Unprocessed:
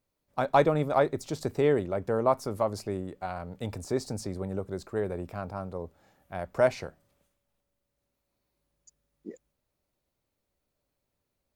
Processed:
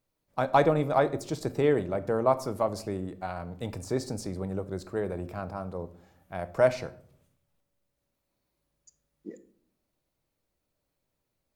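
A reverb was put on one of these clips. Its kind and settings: simulated room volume 940 m³, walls furnished, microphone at 0.63 m

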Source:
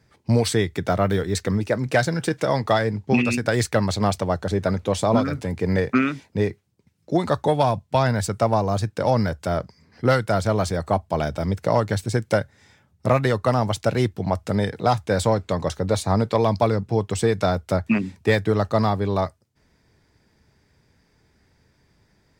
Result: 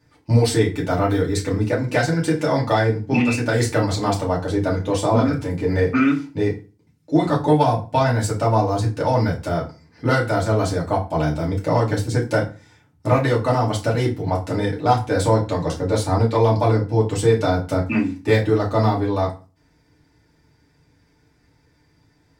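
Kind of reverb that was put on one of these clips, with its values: FDN reverb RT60 0.33 s, low-frequency decay 1.25×, high-frequency decay 0.8×, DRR -4.5 dB; trim -4.5 dB

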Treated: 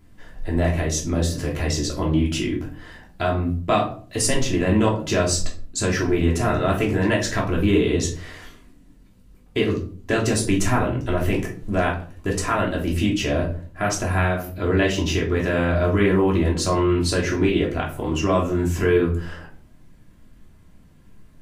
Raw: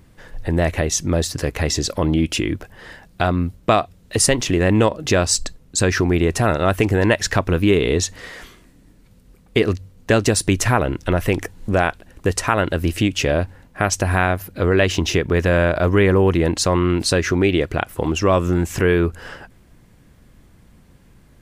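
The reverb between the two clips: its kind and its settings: simulated room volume 300 m³, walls furnished, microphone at 3 m; trim -9 dB

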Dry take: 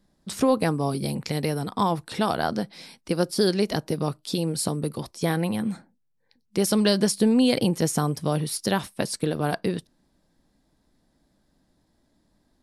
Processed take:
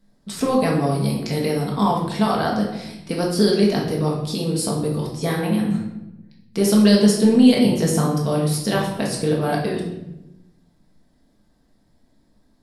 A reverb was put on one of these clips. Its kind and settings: simulated room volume 330 m³, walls mixed, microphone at 1.6 m; trim -1 dB

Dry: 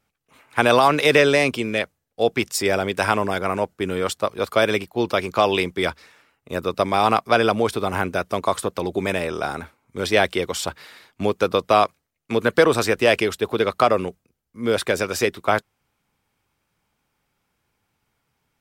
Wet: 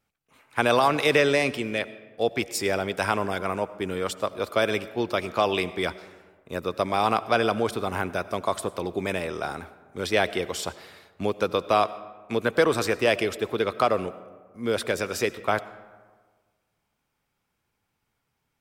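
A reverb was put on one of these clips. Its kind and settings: algorithmic reverb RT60 1.5 s, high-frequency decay 0.5×, pre-delay 50 ms, DRR 16 dB; trim -5 dB

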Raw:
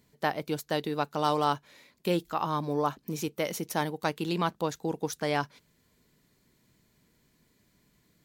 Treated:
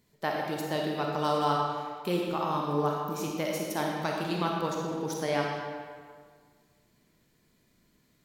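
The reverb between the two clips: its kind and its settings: algorithmic reverb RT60 1.8 s, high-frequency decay 0.75×, pre-delay 5 ms, DRR -1.5 dB; trim -3.5 dB

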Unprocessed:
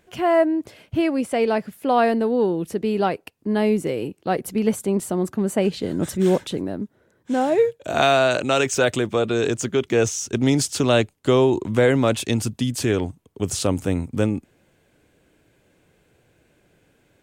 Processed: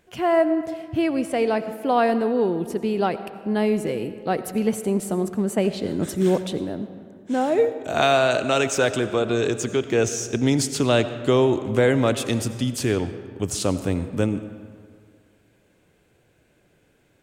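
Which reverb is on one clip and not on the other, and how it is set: algorithmic reverb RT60 2 s, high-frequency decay 0.6×, pre-delay 45 ms, DRR 11.5 dB; trim -1.5 dB

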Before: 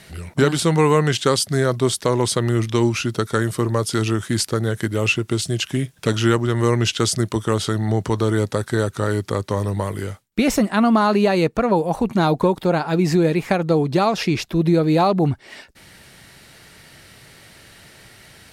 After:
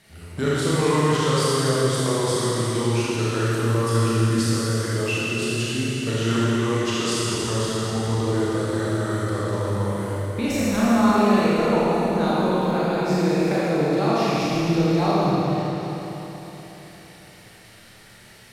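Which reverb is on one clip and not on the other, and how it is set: Schroeder reverb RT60 3.8 s, combs from 27 ms, DRR -9 dB; trim -11.5 dB

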